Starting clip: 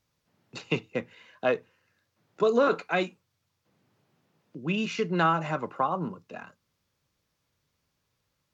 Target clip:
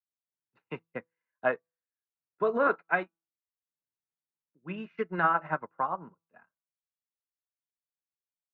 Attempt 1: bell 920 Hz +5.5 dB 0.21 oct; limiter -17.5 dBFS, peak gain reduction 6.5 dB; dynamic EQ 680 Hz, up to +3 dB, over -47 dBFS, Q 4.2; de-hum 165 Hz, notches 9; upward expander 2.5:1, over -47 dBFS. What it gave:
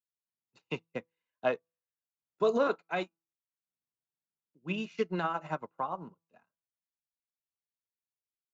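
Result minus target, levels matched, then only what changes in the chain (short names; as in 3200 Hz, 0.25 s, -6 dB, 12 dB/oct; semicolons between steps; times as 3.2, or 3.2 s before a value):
2000 Hz band -4.5 dB
add after dynamic EQ: synth low-pass 1700 Hz, resonance Q 2.5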